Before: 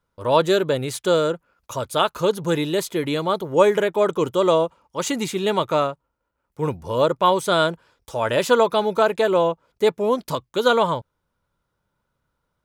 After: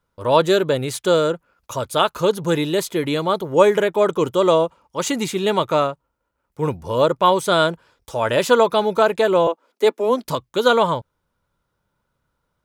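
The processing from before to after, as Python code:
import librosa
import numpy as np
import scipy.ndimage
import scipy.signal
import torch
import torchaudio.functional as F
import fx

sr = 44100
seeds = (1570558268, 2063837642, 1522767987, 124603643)

y = fx.steep_highpass(x, sr, hz=220.0, slope=72, at=(9.47, 10.24))
y = y * librosa.db_to_amplitude(2.0)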